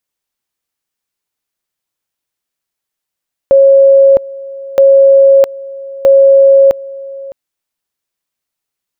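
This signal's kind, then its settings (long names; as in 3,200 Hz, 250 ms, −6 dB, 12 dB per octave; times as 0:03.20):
tone at two levels in turn 547 Hz −2 dBFS, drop 20.5 dB, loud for 0.66 s, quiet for 0.61 s, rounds 3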